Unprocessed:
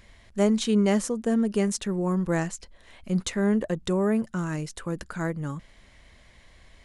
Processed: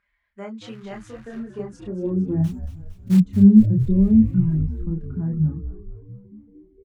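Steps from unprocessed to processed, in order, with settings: per-bin expansion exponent 1.5; low shelf 360 Hz +11.5 dB; comb 4.9 ms, depth 69%; dynamic EQ 1300 Hz, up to -4 dB, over -36 dBFS, Q 1.3; in parallel at +3 dB: limiter -9 dBFS, peak gain reduction 6.5 dB; on the sum: compressor 3:1, threshold -9 dBFS, peak gain reduction 6 dB; 0.62–1.39 crackle 210/s -25 dBFS; 3.93–4.48 band noise 1800–2900 Hz -37 dBFS; band-pass sweep 1500 Hz -> 210 Hz, 1.42–2.42; 2.44–3.17 companded quantiser 6-bit; chorus voices 6, 1.3 Hz, delay 29 ms, depth 3.3 ms; frequency-shifting echo 0.229 s, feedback 60%, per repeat -91 Hz, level -11 dB

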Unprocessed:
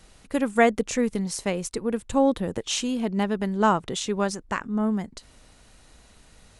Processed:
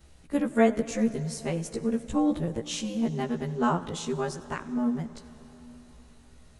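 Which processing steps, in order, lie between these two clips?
short-time reversal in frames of 35 ms; low shelf 390 Hz +7 dB; plate-style reverb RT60 4.7 s, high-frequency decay 0.9×, DRR 16 dB; warbling echo 95 ms, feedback 67%, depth 142 cents, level -20.5 dB; gain -4 dB

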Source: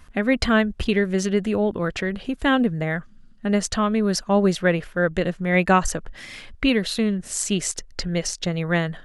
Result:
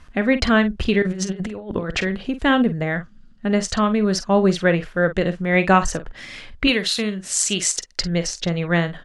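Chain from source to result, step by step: LPF 7300 Hz 12 dB/oct; 1.02–2.01 negative-ratio compressor -27 dBFS, ratio -0.5; 6.67–8.01 tilt +2.5 dB/oct; doubler 47 ms -12 dB; gain +2 dB

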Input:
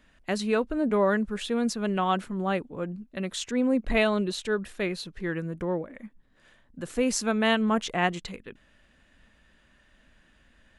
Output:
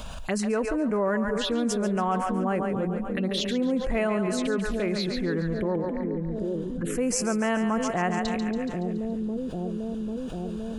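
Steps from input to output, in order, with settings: 5.75–6.85 treble ducked by the level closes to 450 Hz, closed at -32.5 dBFS; envelope phaser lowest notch 310 Hz, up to 3700 Hz, full sweep at -25.5 dBFS; on a send: split-band echo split 510 Hz, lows 0.794 s, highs 0.141 s, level -8.5 dB; on the sum: fast leveller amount 70%; gain -3 dB

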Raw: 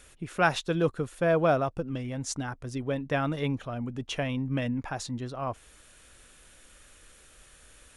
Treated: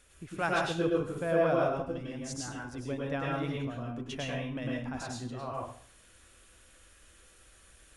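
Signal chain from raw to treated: plate-style reverb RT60 0.5 s, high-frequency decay 0.8×, pre-delay 90 ms, DRR -3.5 dB; gain -8.5 dB

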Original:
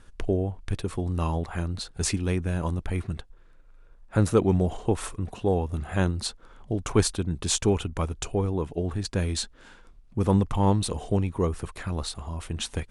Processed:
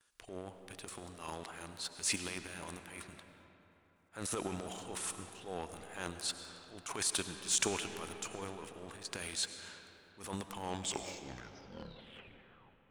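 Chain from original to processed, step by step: tape stop at the end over 2.39 s; gate with hold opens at -45 dBFS; differentiator; sample leveller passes 1; high shelf 3400 Hz -10 dB; transient shaper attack -7 dB, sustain +11 dB; on a send: reverb RT60 3.5 s, pre-delay 60 ms, DRR 8 dB; on the sum: gain +3.5 dB

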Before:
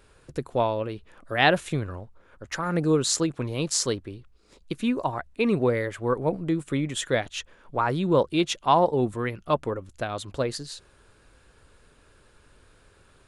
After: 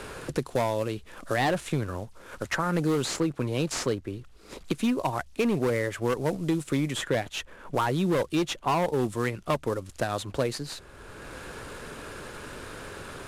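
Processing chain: CVSD 64 kbps; overloaded stage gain 20 dB; three-band squash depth 70%

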